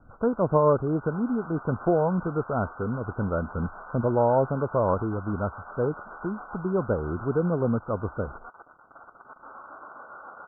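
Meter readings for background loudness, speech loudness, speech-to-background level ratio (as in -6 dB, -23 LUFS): -43.0 LUFS, -27.0 LUFS, 16.0 dB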